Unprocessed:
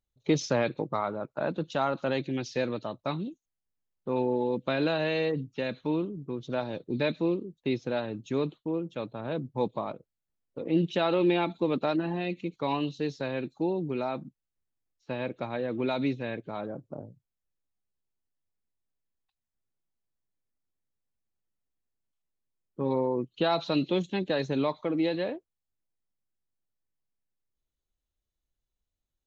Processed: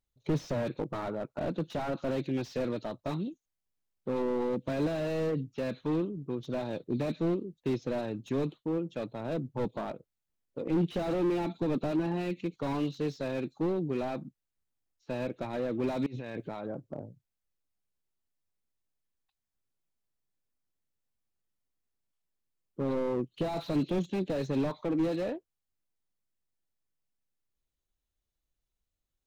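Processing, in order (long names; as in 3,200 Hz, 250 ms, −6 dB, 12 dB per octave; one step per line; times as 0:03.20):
0:16.06–0:16.67: compressor whose output falls as the input rises −40 dBFS, ratio −1
slew-rate limiting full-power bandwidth 19 Hz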